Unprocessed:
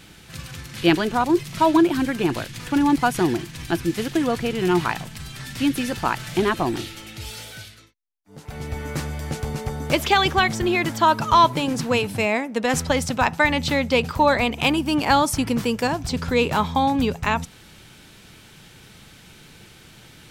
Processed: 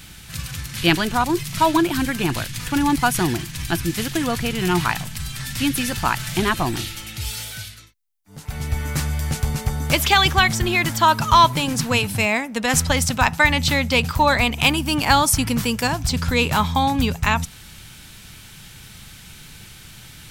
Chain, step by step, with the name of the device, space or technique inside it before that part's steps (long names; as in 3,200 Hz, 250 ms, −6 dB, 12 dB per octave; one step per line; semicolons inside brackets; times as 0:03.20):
smiley-face EQ (low-shelf EQ 100 Hz +6.5 dB; parametric band 410 Hz −8.5 dB 1.7 octaves; high-shelf EQ 7,600 Hz +8 dB)
level +4 dB